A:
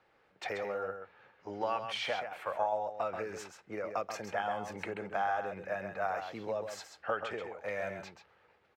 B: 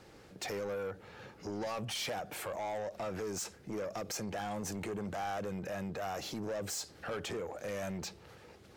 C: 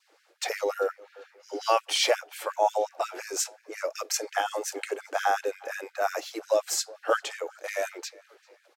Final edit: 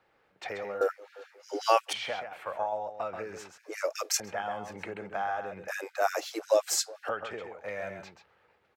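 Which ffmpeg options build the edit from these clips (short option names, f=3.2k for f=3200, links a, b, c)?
-filter_complex "[2:a]asplit=3[a][b][c];[0:a]asplit=4[d][e][f][g];[d]atrim=end=0.812[h];[a]atrim=start=0.808:end=1.932[i];[e]atrim=start=1.928:end=3.582[j];[b]atrim=start=3.578:end=4.202[k];[f]atrim=start=4.198:end=5.682[l];[c]atrim=start=5.678:end=7.092[m];[g]atrim=start=7.088[n];[h][i]acrossfade=d=0.004:c1=hsin:c2=hsin[o];[o][j]acrossfade=d=0.004:c1=hsin:c2=hsin[p];[p][k]acrossfade=d=0.004:c1=hsin:c2=hsin[q];[q][l]acrossfade=d=0.004:c1=hsin:c2=hsin[r];[r][m]acrossfade=d=0.004:c1=hsin:c2=hsin[s];[s][n]acrossfade=d=0.004:c1=hsin:c2=hsin"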